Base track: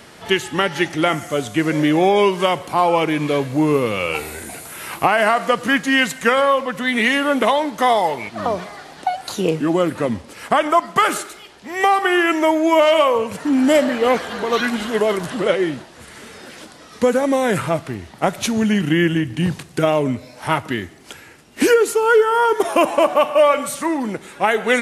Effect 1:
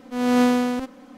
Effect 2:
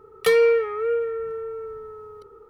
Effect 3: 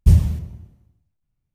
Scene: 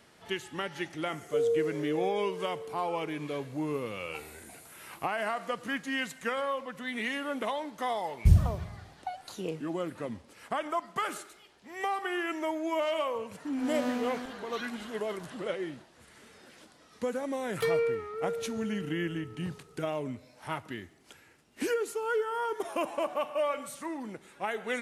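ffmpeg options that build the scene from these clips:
ffmpeg -i bed.wav -i cue0.wav -i cue1.wav -i cue2.wav -filter_complex "[2:a]asplit=2[link_01][link_02];[0:a]volume=-16.5dB[link_03];[link_01]asuperpass=centerf=350:order=4:qfactor=1.7[link_04];[3:a]asplit=2[link_05][link_06];[link_06]adelay=46,volume=-7.5dB[link_07];[link_05][link_07]amix=inputs=2:normalize=0[link_08];[link_04]atrim=end=2.49,asetpts=PTS-STARTPTS,volume=-7.5dB,afade=type=in:duration=0.004:curve=hsin,afade=type=out:start_time=2.486:duration=0.004:curve=hsin,adelay=1070[link_09];[link_08]atrim=end=1.54,asetpts=PTS-STARTPTS,volume=-8.5dB,afade=type=in:duration=0.004:curve=hsin,afade=type=out:start_time=1.536:duration=0.004:curve=hsin,adelay=8190[link_10];[1:a]atrim=end=1.17,asetpts=PTS-STARTPTS,volume=-14.5dB,afade=type=in:duration=0.004:curve=hsin,afade=type=out:start_time=1.166:duration=0.004:curve=hsin,adelay=13460[link_11];[link_02]atrim=end=2.49,asetpts=PTS-STARTPTS,volume=-11dB,afade=type=in:duration=0.004:curve=hsin,afade=type=out:start_time=2.486:duration=0.004:curve=hsin,adelay=17360[link_12];[link_03][link_09][link_10][link_11][link_12]amix=inputs=5:normalize=0" out.wav

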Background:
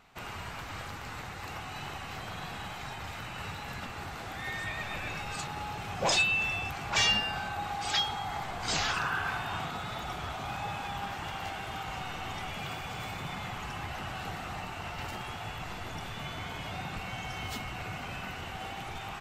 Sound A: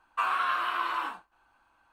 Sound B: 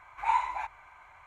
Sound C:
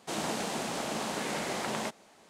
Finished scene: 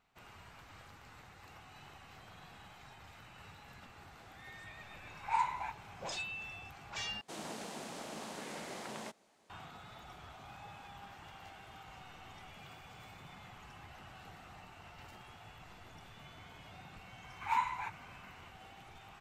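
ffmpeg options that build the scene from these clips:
ffmpeg -i bed.wav -i cue0.wav -i cue1.wav -i cue2.wav -filter_complex "[2:a]asplit=2[link_01][link_02];[0:a]volume=-15dB[link_03];[link_01]bandreject=frequency=1200:width=12[link_04];[link_02]highpass=frequency=940:width=0.5412,highpass=frequency=940:width=1.3066[link_05];[link_03]asplit=2[link_06][link_07];[link_06]atrim=end=7.214[link_08];[3:a]atrim=end=2.29,asetpts=PTS-STARTPTS,volume=-11dB[link_09];[link_07]atrim=start=9.496[link_10];[link_04]atrim=end=1.26,asetpts=PTS-STARTPTS,volume=-5.5dB,afade=type=in:duration=0.004:curve=hsin,afade=type=out:start_time=1.256:duration=0.004:curve=hsin,adelay=222705S[link_11];[link_05]atrim=end=1.26,asetpts=PTS-STARTPTS,volume=-3dB,afade=type=in:duration=0.004:curve=hsin,afade=type=out:start_time=1.256:duration=0.004:curve=hsin,adelay=17230[link_12];[link_08][link_09]acrossfade=duration=0.004:curve1=hsin:curve2=hsin[link_13];[link_13][link_10]acrossfade=duration=0.004:curve1=hsin:curve2=hsin[link_14];[link_14][link_11][link_12]amix=inputs=3:normalize=0" out.wav

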